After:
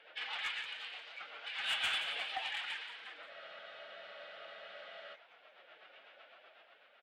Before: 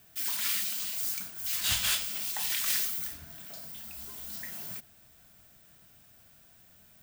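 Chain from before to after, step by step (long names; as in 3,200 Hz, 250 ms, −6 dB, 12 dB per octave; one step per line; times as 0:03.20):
in parallel at −1 dB: brickwall limiter −24 dBFS, peak gain reduction 8 dB
on the sum: downward compressor 3 to 1, threshold −30 dBFS, peak gain reduction 7 dB
single-sideband voice off tune −54 Hz 540–3,300 Hz
rotating-speaker cabinet horn 8 Hz
phase-vocoder pitch shift with formants kept +4.5 semitones
soft clipping −36 dBFS, distortion −15 dB
amplitude tremolo 0.5 Hz, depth 55%
echo with shifted repeats 176 ms, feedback 53%, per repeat +65 Hz, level −10.5 dB
frozen spectrum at 0:03.31, 1.84 s
level +8.5 dB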